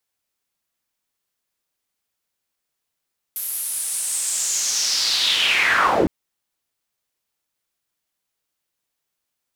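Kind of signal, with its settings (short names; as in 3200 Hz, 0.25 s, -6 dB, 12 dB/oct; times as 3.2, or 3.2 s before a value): swept filtered noise pink, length 2.71 s bandpass, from 12000 Hz, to 210 Hz, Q 4.2, linear, gain ramp +9 dB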